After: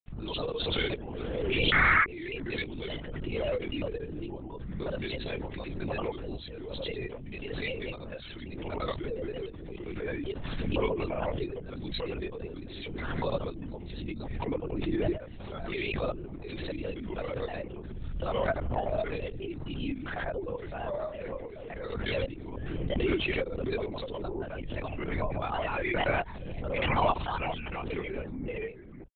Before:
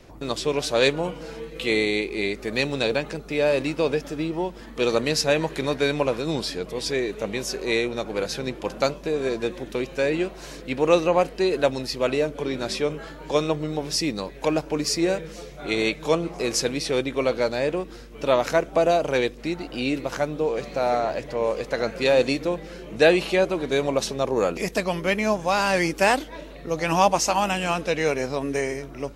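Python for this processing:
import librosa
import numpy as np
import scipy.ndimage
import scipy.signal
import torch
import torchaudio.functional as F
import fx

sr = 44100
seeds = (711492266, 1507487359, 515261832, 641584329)

p1 = fx.bin_expand(x, sr, power=1.5)
p2 = fx.notch(p1, sr, hz=530.0, q=14.0)
p3 = fx.granulator(p2, sr, seeds[0], grain_ms=100.0, per_s=20.0, spray_ms=100.0, spread_st=3)
p4 = fx.spec_paint(p3, sr, seeds[1], shape='noise', start_s=1.73, length_s=0.32, low_hz=1100.0, high_hz=2300.0, level_db=-16.0)
p5 = (np.mod(10.0 ** (8.5 / 20.0) * p4 + 1.0, 2.0) - 1.0) / 10.0 ** (8.5 / 20.0)
p6 = p4 + F.gain(torch.from_numpy(p5), -9.5).numpy()
p7 = fx.lpc_vocoder(p6, sr, seeds[2], excitation='whisper', order=10)
p8 = fx.pre_swell(p7, sr, db_per_s=24.0)
y = F.gain(torch.from_numpy(p8), -8.5).numpy()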